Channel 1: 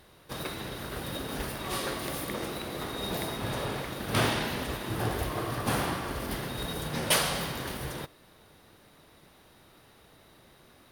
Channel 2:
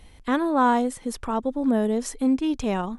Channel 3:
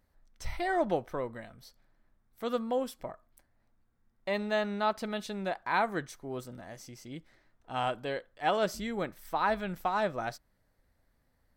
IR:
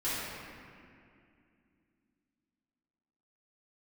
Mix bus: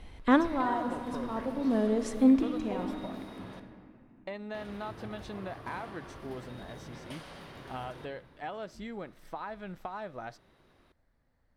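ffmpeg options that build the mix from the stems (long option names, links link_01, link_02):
-filter_complex "[0:a]acompressor=threshold=-37dB:ratio=4,volume=-9dB,asplit=3[link_01][link_02][link_03];[link_01]atrim=end=3.6,asetpts=PTS-STARTPTS,afade=type=out:start_time=3.596:duration=0.004:curve=hsin[link_04];[link_02]atrim=start=3.6:end=4.54,asetpts=PTS-STARTPTS,volume=0[link_05];[link_03]atrim=start=4.54,asetpts=PTS-STARTPTS,afade=type=in:duration=0.004:curve=hsin[link_06];[link_04][link_05][link_06]concat=n=3:v=0:a=1,asplit=2[link_07][link_08];[link_08]volume=-12.5dB[link_09];[1:a]volume=0.5dB,asplit=2[link_10][link_11];[link_11]volume=-23dB[link_12];[2:a]acompressor=threshold=-36dB:ratio=6,volume=-1dB,asplit=2[link_13][link_14];[link_14]apad=whole_len=131734[link_15];[link_10][link_15]sidechaincompress=threshold=-50dB:ratio=8:attack=16:release=1080[link_16];[3:a]atrim=start_sample=2205[link_17];[link_09][link_12]amix=inputs=2:normalize=0[link_18];[link_18][link_17]afir=irnorm=-1:irlink=0[link_19];[link_07][link_16][link_13][link_19]amix=inputs=4:normalize=0,aemphasis=mode=reproduction:type=50fm"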